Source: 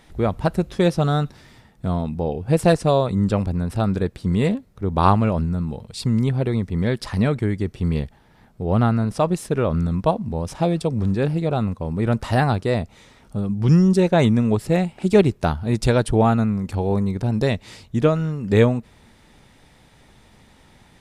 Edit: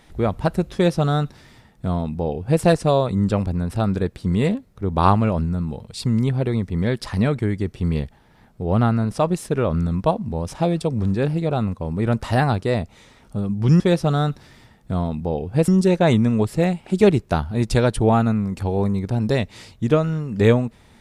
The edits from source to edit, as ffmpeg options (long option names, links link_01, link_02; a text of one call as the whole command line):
ffmpeg -i in.wav -filter_complex "[0:a]asplit=3[link_01][link_02][link_03];[link_01]atrim=end=13.802[link_04];[link_02]atrim=start=0.738:end=2.622[link_05];[link_03]atrim=start=13.798[link_06];[link_04][link_05]acrossfade=duration=0.004:curve1=hsin:curve2=hsin[link_07];[link_07][link_06]acrossfade=duration=0.004:curve1=hsin:curve2=hsin" out.wav